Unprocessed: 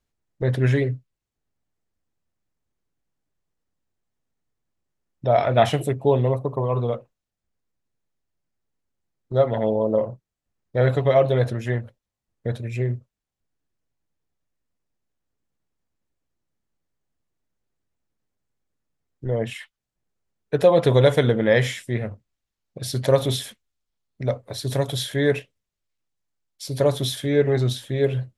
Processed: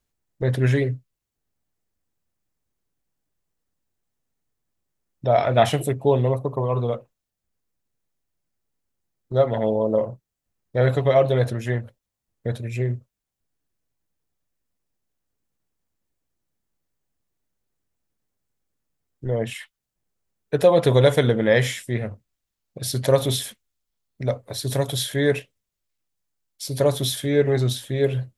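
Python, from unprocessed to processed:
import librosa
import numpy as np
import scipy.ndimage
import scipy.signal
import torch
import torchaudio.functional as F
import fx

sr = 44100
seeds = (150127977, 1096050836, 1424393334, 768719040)

y = fx.high_shelf(x, sr, hz=7900.0, db=8.0)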